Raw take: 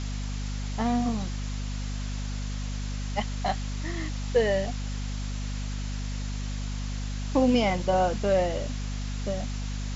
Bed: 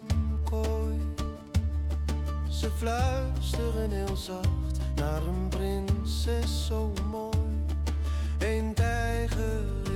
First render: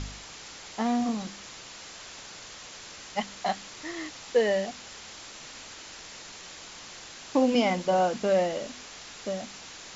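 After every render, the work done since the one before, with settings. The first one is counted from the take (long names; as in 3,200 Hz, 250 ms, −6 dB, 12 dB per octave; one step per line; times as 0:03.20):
hum removal 50 Hz, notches 5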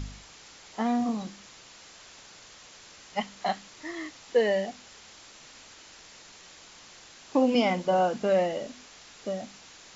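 noise reduction from a noise print 6 dB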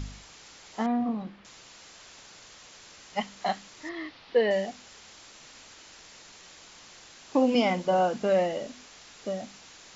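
0:00.86–0:01.45: high-frequency loss of the air 380 metres
0:03.89–0:04.51: Butterworth low-pass 4,700 Hz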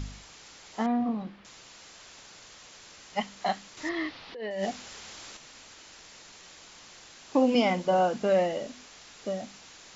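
0:03.77–0:05.37: compressor whose output falls as the input rises −32 dBFS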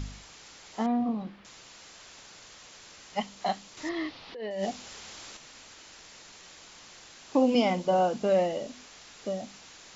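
dynamic equaliser 1,700 Hz, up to −5 dB, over −49 dBFS, Q 1.5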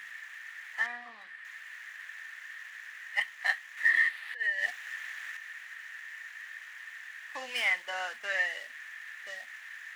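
running median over 9 samples
high-pass with resonance 1,800 Hz, resonance Q 13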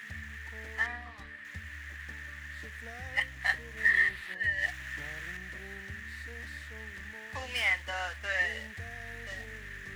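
mix in bed −19 dB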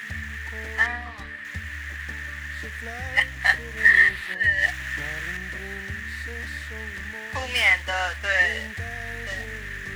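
level +9.5 dB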